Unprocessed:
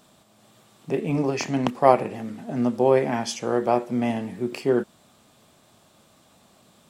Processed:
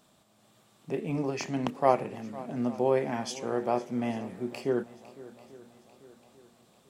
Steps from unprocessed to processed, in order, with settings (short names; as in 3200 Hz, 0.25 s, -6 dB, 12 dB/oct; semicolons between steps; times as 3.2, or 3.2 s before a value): swung echo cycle 0.843 s, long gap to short 1.5:1, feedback 41%, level -18.5 dB; gain -7 dB